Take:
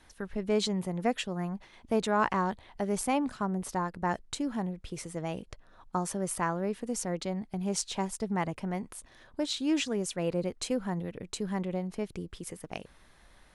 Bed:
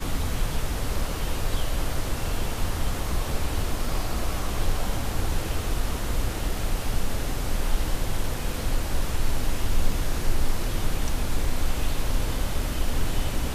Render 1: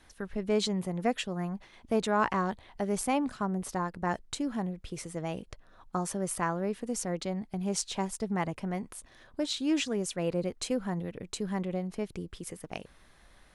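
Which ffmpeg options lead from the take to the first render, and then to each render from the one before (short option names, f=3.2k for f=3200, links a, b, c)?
-af "bandreject=f=910:w=24"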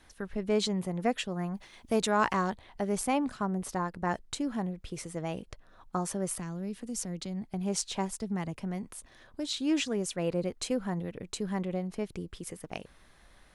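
-filter_complex "[0:a]asettb=1/sr,asplit=3[a][b][c];[a]atrim=end=1.544[d];[b]atrim=start=1.54:end=2.5,asetpts=PTS-STARTPTS,afade=t=in:d=0.004:c=qsin,afade=t=out:st=0.956:d=0.004:c=qsin,highshelf=f=3.8k:g=9[e];[c]atrim=start=2.496[f];[d][e]acrossfade=d=0.004:c1=hsin:c2=qsin[g];[g][f]acrossfade=d=0.004:c1=qsin:c2=hsin,asettb=1/sr,asplit=3[h][i][j];[h]atrim=end=6.364[k];[i]atrim=start=6.36:end=7.44,asetpts=PTS-STARTPTS,afade=t=in:d=0.004:c=qsin,afade=t=out:st=1.076:d=0.004:c=qsin,acrossover=split=280|3000[l][m][n];[m]acompressor=threshold=-46dB:ratio=6:attack=3.2:release=140:knee=2.83:detection=peak[o];[l][o][n]amix=inputs=3:normalize=0[p];[j]atrim=start=7.436[q];[k][p]acrossfade=d=0.004:c1=hsin:c2=qsin[r];[r][q]acrossfade=d=0.004:c1=qsin:c2=hsin,asettb=1/sr,asplit=3[s][t][u];[s]atrim=end=8.154[v];[t]atrim=start=8.15:end=9.53,asetpts=PTS-STARTPTS,afade=t=in:d=0.004:c=qsin,afade=t=out:st=1.376:d=0.004:c=qsin,acrossover=split=300|3000[w][x][y];[x]acompressor=threshold=-50dB:ratio=1.5:attack=3.2:release=140:knee=2.83:detection=peak[z];[w][z][y]amix=inputs=3:normalize=0[aa];[u]atrim=start=9.526[ab];[v][aa]acrossfade=d=0.004:c1=hsin:c2=qsin[ac];[ac][ab]acrossfade=d=0.004:c1=qsin:c2=hsin"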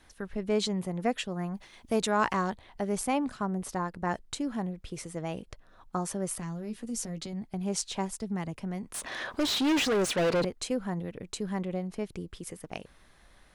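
-filter_complex "[0:a]asettb=1/sr,asplit=3[a][b][c];[a]atrim=end=6.404[d];[b]atrim=start=6.4:end=7.33,asetpts=PTS-STARTPTS,afade=t=in:d=0.004:c=qsin,afade=t=out:st=0.926:d=0.004:c=qsin,asplit=2[e][f];[f]adelay=13,volume=-6.5dB[g];[e][g]amix=inputs=2:normalize=0,atrim=end_sample=41013[h];[c]atrim=start=7.326[i];[d][h]acrossfade=d=0.004:c1=hsin:c2=qsin[j];[j][i]acrossfade=d=0.004:c1=qsin:c2=hsin,asettb=1/sr,asplit=3[k][l][m];[k]atrim=end=8.944[n];[l]atrim=start=8.94:end=10.45,asetpts=PTS-STARTPTS,afade=t=in:d=0.004:c=qsin,afade=t=out:st=1.506:d=0.004:c=qsin,asplit=2[o][p];[p]highpass=f=720:p=1,volume=30dB,asoftclip=type=tanh:threshold=-19dB[q];[o][q]amix=inputs=2:normalize=0,lowpass=f=3.1k:p=1,volume=-6dB[r];[m]atrim=start=10.446[s];[n][r]acrossfade=d=0.004:c1=hsin:c2=qsin[t];[t][s]acrossfade=d=0.004:c1=qsin:c2=hsin"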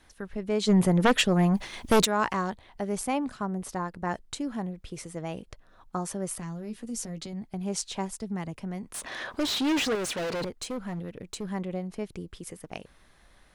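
-filter_complex "[0:a]asplit=3[a][b][c];[a]afade=t=out:st=0.67:d=0.02[d];[b]aeval=exprs='0.188*sin(PI/2*2.82*val(0)/0.188)':c=same,afade=t=in:st=0.67:d=0.02,afade=t=out:st=2.04:d=0.02[e];[c]afade=t=in:st=2.04:d=0.02[f];[d][e][f]amix=inputs=3:normalize=0,asettb=1/sr,asplit=3[g][h][i];[g]atrim=end=9.954[j];[h]atrim=start=9.95:end=11.45,asetpts=PTS-STARTPTS,afade=t=in:d=0.004:c=qsin,afade=t=out:st=1.496:d=0.004:c=qsin,volume=29.5dB,asoftclip=hard,volume=-29.5dB[k];[i]atrim=start=11.446[l];[j][k]acrossfade=d=0.004:c1=hsin:c2=qsin[m];[m][l]acrossfade=d=0.004:c1=qsin:c2=hsin"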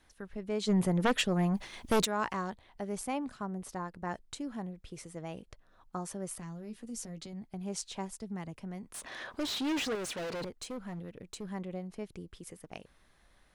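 -af "volume=-6.5dB"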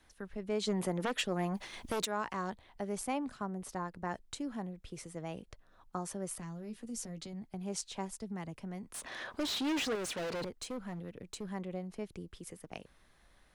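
-filter_complex "[0:a]acrossover=split=240[a][b];[a]acompressor=threshold=-42dB:ratio=6[c];[c][b]amix=inputs=2:normalize=0,alimiter=limit=-24dB:level=0:latency=1:release=232"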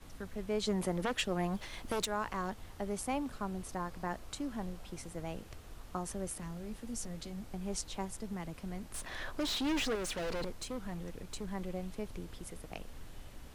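-filter_complex "[1:a]volume=-24dB[a];[0:a][a]amix=inputs=2:normalize=0"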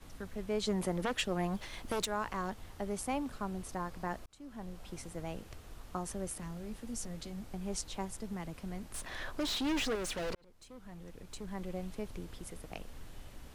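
-filter_complex "[0:a]asplit=3[a][b][c];[a]atrim=end=4.26,asetpts=PTS-STARTPTS,afade=t=out:st=4.256:d=0.004:c=hsin[d];[b]atrim=start=4.26:end=10.35,asetpts=PTS-STARTPTS,afade=t=in:d=0.63,afade=t=out:st=6.086:d=0.004:c=hsin[e];[c]atrim=start=10.35,asetpts=PTS-STARTPTS,afade=t=in:d=1.45[f];[d][e][f]concat=n=3:v=0:a=1"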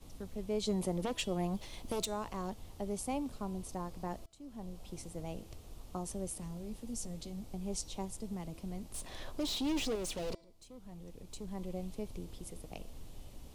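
-af "equalizer=f=1.6k:w=1.4:g=-12.5,bandreject=f=332:t=h:w=4,bandreject=f=664:t=h:w=4,bandreject=f=996:t=h:w=4,bandreject=f=1.328k:t=h:w=4,bandreject=f=1.66k:t=h:w=4,bandreject=f=1.992k:t=h:w=4,bandreject=f=2.324k:t=h:w=4,bandreject=f=2.656k:t=h:w=4,bandreject=f=2.988k:t=h:w=4,bandreject=f=3.32k:t=h:w=4,bandreject=f=3.652k:t=h:w=4,bandreject=f=3.984k:t=h:w=4,bandreject=f=4.316k:t=h:w=4,bandreject=f=4.648k:t=h:w=4,bandreject=f=4.98k:t=h:w=4,bandreject=f=5.312k:t=h:w=4,bandreject=f=5.644k:t=h:w=4,bandreject=f=5.976k:t=h:w=4,bandreject=f=6.308k:t=h:w=4,bandreject=f=6.64k:t=h:w=4,bandreject=f=6.972k:t=h:w=4,bandreject=f=7.304k:t=h:w=4,bandreject=f=7.636k:t=h:w=4,bandreject=f=7.968k:t=h:w=4,bandreject=f=8.3k:t=h:w=4,bandreject=f=8.632k:t=h:w=4,bandreject=f=8.964k:t=h:w=4,bandreject=f=9.296k:t=h:w=4"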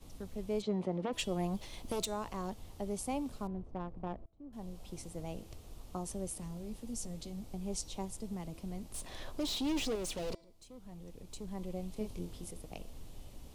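-filter_complex "[0:a]asplit=3[a][b][c];[a]afade=t=out:st=0.61:d=0.02[d];[b]highpass=130,lowpass=2.5k,afade=t=in:st=0.61:d=0.02,afade=t=out:st=1.12:d=0.02[e];[c]afade=t=in:st=1.12:d=0.02[f];[d][e][f]amix=inputs=3:normalize=0,asettb=1/sr,asplit=3[g][h][i];[g]atrim=end=3.474[j];[h]atrim=start=3.47:end=4.53,asetpts=PTS-STARTPTS,afade=t=in:d=0.004:c=qsin,afade=t=out:st=1.056:d=0.004:c=qsin,adynamicsmooth=sensitivity=4.5:basefreq=770[k];[i]atrim=start=4.526[l];[j][k]acrossfade=d=0.004:c1=hsin:c2=qsin[m];[m][l]acrossfade=d=0.004:c1=qsin:c2=hsin,asettb=1/sr,asplit=3[n][o][p];[n]atrim=end=11.944[q];[o]atrim=start=11.94:end=12.51,asetpts=PTS-STARTPTS,afade=t=in:d=0.004:c=qsin,afade=t=out:st=0.566:d=0.004:c=qsin,asplit=2[r][s];[s]adelay=23,volume=-4dB[t];[r][t]amix=inputs=2:normalize=0,atrim=end_sample=25137[u];[p]atrim=start=12.506[v];[q][u]acrossfade=d=0.004:c1=hsin:c2=qsin[w];[w][v]acrossfade=d=0.004:c1=qsin:c2=hsin"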